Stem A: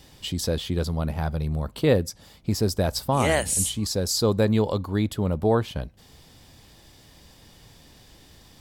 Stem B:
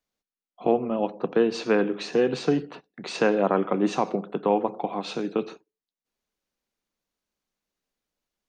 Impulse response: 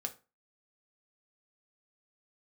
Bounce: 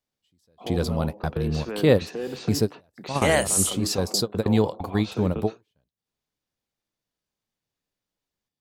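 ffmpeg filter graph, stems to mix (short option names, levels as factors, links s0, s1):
-filter_complex "[0:a]highpass=87,volume=1.26[s0];[1:a]alimiter=limit=0.106:level=0:latency=1:release=86,volume=0.668,asplit=2[s1][s2];[s2]apad=whole_len=379396[s3];[s0][s3]sidechaingate=range=0.00891:threshold=0.0158:ratio=16:detection=peak[s4];[s4][s1]amix=inputs=2:normalize=0"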